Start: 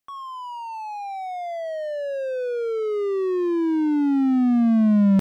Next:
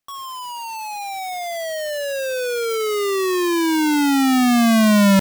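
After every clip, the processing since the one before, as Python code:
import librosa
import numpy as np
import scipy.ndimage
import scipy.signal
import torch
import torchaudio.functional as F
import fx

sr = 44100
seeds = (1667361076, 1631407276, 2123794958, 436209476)

y = fx.halfwave_hold(x, sr)
y = y * 10.0 ** (-1.5 / 20.0)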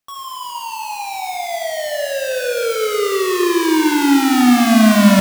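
y = fx.rev_schroeder(x, sr, rt60_s=2.7, comb_ms=25, drr_db=1.5)
y = y * 10.0 ** (1.0 / 20.0)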